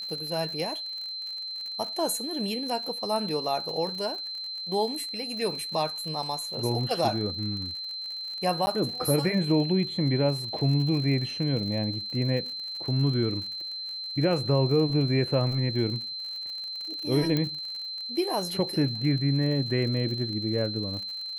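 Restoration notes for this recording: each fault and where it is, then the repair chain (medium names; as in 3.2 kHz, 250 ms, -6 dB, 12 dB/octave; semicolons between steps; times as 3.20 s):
crackle 54 per s -35 dBFS
whine 4.1 kHz -33 dBFS
8.66–8.67 s: dropout 10 ms
17.37 s: pop -14 dBFS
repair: de-click; band-stop 4.1 kHz, Q 30; interpolate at 8.66 s, 10 ms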